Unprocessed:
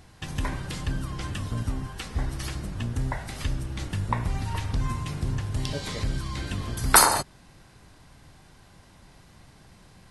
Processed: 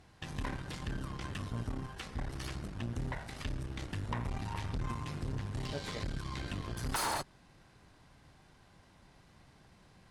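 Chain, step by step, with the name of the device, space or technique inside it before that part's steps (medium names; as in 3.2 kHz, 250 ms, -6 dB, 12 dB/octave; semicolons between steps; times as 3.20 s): tube preamp driven hard (valve stage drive 27 dB, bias 0.75; bass shelf 140 Hz -3.5 dB; treble shelf 6.9 kHz -9 dB); trim -2 dB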